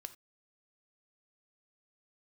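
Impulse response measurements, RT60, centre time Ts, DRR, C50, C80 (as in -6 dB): no single decay rate, 4 ms, 10.5 dB, 15.0 dB, 20.5 dB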